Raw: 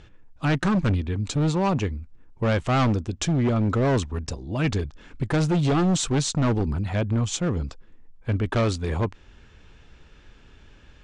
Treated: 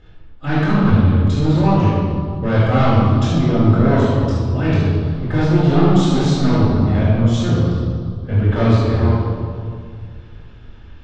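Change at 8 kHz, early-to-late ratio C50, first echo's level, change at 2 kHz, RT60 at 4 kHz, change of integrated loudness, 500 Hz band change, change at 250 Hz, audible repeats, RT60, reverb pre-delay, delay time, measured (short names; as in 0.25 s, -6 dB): n/a, -3.5 dB, none, +5.0 dB, 1.6 s, +8.5 dB, +7.5 dB, +9.0 dB, none, 2.1 s, 4 ms, none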